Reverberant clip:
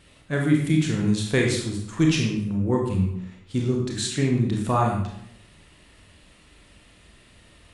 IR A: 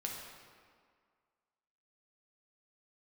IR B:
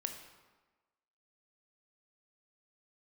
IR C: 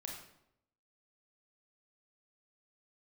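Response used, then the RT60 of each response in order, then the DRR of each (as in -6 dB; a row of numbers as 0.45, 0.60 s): C; 1.9, 1.3, 0.80 s; -1.0, 4.5, -0.5 dB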